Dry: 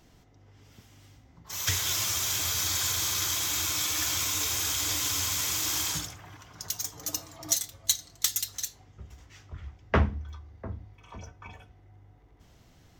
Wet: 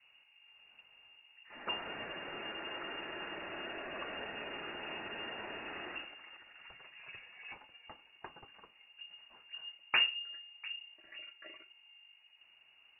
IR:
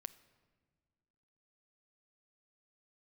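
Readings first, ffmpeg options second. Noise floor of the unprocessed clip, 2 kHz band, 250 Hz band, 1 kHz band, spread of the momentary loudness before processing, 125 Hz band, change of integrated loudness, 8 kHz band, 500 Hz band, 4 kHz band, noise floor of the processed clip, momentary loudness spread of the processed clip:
-58 dBFS, -2.5 dB, -11.0 dB, -7.0 dB, 18 LU, -27.0 dB, -12.5 dB, under -40 dB, -6.0 dB, -9.0 dB, -65 dBFS, 19 LU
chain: -af "lowpass=f=2.5k:t=q:w=0.5098,lowpass=f=2.5k:t=q:w=0.6013,lowpass=f=2.5k:t=q:w=0.9,lowpass=f=2.5k:t=q:w=2.563,afreqshift=-2900,adynamicequalizer=threshold=0.00126:dfrequency=330:dqfactor=1:tfrequency=330:tqfactor=1:attack=5:release=100:ratio=0.375:range=3.5:mode=boostabove:tftype=bell,volume=-6.5dB"

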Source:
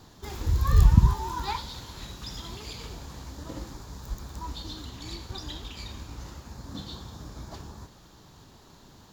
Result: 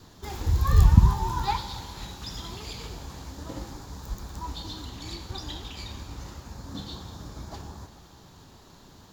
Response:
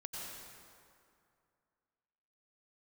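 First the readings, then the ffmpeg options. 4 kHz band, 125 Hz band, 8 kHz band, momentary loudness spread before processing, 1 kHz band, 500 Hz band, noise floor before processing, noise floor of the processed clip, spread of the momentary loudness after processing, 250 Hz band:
+1.0 dB, +1.5 dB, +1.0 dB, 21 LU, +3.0 dB, +1.5 dB, -53 dBFS, -52 dBFS, 21 LU, +1.5 dB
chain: -filter_complex "[0:a]adynamicequalizer=threshold=0.00141:dfrequency=800:dqfactor=7.4:tfrequency=800:tqfactor=7.4:attack=5:release=100:ratio=0.375:range=3:mode=boostabove:tftype=bell,asplit=2[a][b];[1:a]atrim=start_sample=2205,adelay=11[c];[b][c]afir=irnorm=-1:irlink=0,volume=-11.5dB[d];[a][d]amix=inputs=2:normalize=0,volume=1dB"

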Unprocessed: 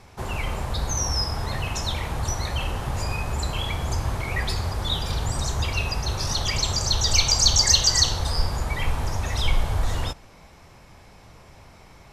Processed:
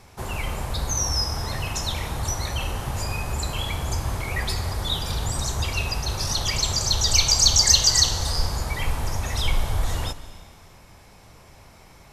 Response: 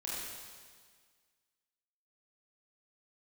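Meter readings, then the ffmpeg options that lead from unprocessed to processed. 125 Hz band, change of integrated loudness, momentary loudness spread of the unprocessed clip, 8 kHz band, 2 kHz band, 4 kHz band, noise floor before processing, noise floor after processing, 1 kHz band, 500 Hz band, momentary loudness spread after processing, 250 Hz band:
-1.0 dB, +1.0 dB, 12 LU, +2.5 dB, -0.5 dB, +1.0 dB, -49 dBFS, -49 dBFS, -0.5 dB, -1.0 dB, 14 LU, -0.5 dB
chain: -filter_complex "[0:a]highshelf=f=8.3k:g=9.5,asplit=2[a][b];[1:a]atrim=start_sample=2205,adelay=147[c];[b][c]afir=irnorm=-1:irlink=0,volume=-16.5dB[d];[a][d]amix=inputs=2:normalize=0,volume=-1dB"

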